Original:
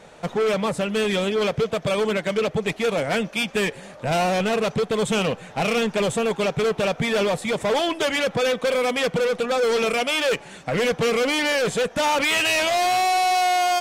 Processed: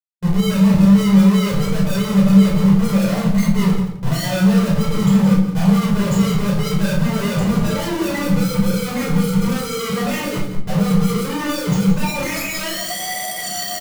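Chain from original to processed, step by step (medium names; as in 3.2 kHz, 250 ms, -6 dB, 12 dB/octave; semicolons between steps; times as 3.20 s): spectral contrast enhancement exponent 3.6; peaking EQ 4.7 kHz -12 dB 0.36 oct; Schmitt trigger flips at -34 dBFS; small resonant body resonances 200/1200 Hz, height 15 dB, ringing for 90 ms; formant shift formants -2 st; on a send: loudspeakers at several distances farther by 11 m -10 dB, 59 m -11 dB; on the sum: simulated room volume 760 m³, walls furnished, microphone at 4.9 m; endings held to a fixed fall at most 250 dB/s; trim -7.5 dB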